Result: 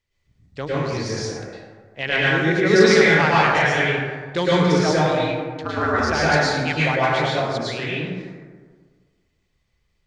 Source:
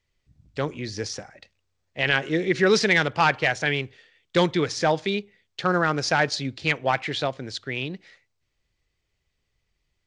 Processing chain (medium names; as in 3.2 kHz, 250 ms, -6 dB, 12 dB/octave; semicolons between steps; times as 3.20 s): 5.00–6.09 s: ring modulator 76 Hz; plate-style reverb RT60 1.6 s, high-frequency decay 0.4×, pre-delay 95 ms, DRR -8 dB; trim -3.5 dB